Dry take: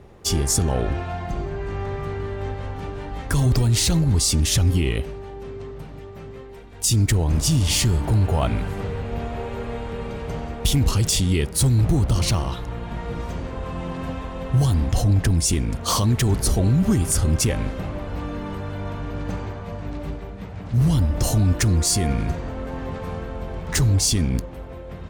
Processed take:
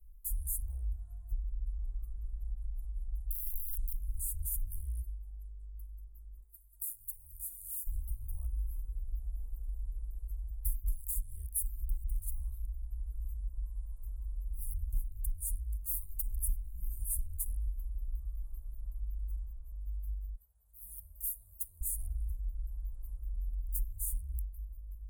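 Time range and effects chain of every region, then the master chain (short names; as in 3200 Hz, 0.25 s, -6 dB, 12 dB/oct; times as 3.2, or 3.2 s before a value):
3.29–3.93 LPF 1500 Hz + wrapped overs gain 20 dB + fast leveller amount 100%
6.42–7.87 tilt +3 dB/oct + compressor 3:1, threshold -34 dBFS
20.34–21.81 HPF 620 Hz 6 dB/oct + dynamic EQ 1400 Hz, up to -6 dB, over -50 dBFS, Q 2.1
whole clip: inverse Chebyshev band-stop 110–5700 Hz, stop band 50 dB; compressor 3:1, threshold -35 dBFS; gain +3.5 dB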